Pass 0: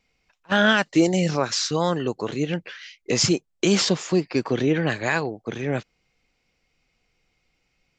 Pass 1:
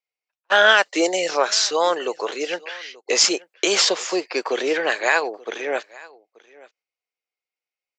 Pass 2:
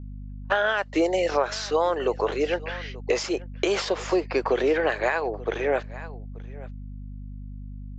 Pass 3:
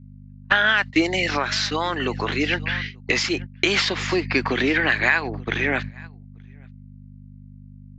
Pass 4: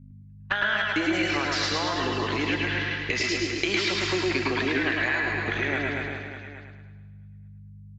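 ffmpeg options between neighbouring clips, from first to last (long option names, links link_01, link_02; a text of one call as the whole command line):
ffmpeg -i in.wav -af "agate=range=-26dB:threshold=-43dB:ratio=16:detection=peak,highpass=frequency=440:width=0.5412,highpass=frequency=440:width=1.3066,aecho=1:1:881:0.075,volume=5.5dB" out.wav
ffmpeg -i in.wav -af "aeval=exprs='val(0)+0.01*(sin(2*PI*50*n/s)+sin(2*PI*2*50*n/s)/2+sin(2*PI*3*50*n/s)/3+sin(2*PI*4*50*n/s)/4+sin(2*PI*5*50*n/s)/5)':channel_layout=same,acompressor=threshold=-21dB:ratio=6,lowpass=frequency=1200:poles=1,volume=4dB" out.wav
ffmpeg -i in.wav -af "agate=range=-13dB:threshold=-33dB:ratio=16:detection=peak,equalizer=frequency=125:width_type=o:width=1:gain=12,equalizer=frequency=250:width_type=o:width=1:gain=10,equalizer=frequency=500:width_type=o:width=1:gain=-12,equalizer=frequency=2000:width_type=o:width=1:gain=10,equalizer=frequency=4000:width_type=o:width=1:gain=8,volume=1dB" out.wav
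ffmpeg -i in.wav -filter_complex "[0:a]asplit=2[link_01][link_02];[link_02]aecho=0:1:110|242|400.4|590.5|818.6:0.631|0.398|0.251|0.158|0.1[link_03];[link_01][link_03]amix=inputs=2:normalize=0,acompressor=threshold=-20dB:ratio=3,asplit=2[link_04][link_05];[link_05]aecho=0:1:107|214|321|428|535|642:0.562|0.253|0.114|0.0512|0.0231|0.0104[link_06];[link_04][link_06]amix=inputs=2:normalize=0,volume=-4dB" out.wav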